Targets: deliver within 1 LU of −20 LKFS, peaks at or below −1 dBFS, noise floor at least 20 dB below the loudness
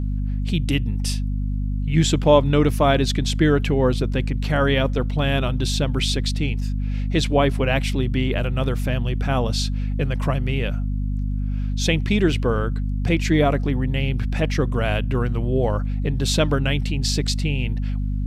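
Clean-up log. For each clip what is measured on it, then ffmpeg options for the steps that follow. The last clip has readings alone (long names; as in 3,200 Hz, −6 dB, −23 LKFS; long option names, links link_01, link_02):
mains hum 50 Hz; hum harmonics up to 250 Hz; level of the hum −21 dBFS; integrated loudness −22.0 LKFS; sample peak −1.5 dBFS; target loudness −20.0 LKFS
→ -af "bandreject=frequency=50:width_type=h:width=4,bandreject=frequency=100:width_type=h:width=4,bandreject=frequency=150:width_type=h:width=4,bandreject=frequency=200:width_type=h:width=4,bandreject=frequency=250:width_type=h:width=4"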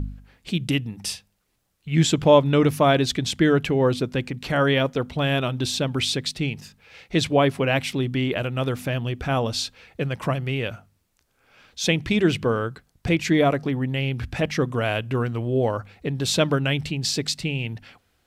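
mains hum none found; integrated loudness −23.0 LKFS; sample peak −3.0 dBFS; target loudness −20.0 LKFS
→ -af "volume=3dB,alimiter=limit=-1dB:level=0:latency=1"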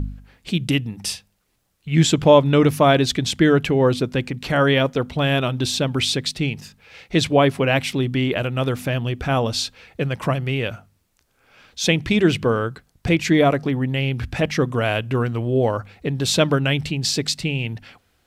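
integrated loudness −20.0 LKFS; sample peak −1.0 dBFS; background noise floor −66 dBFS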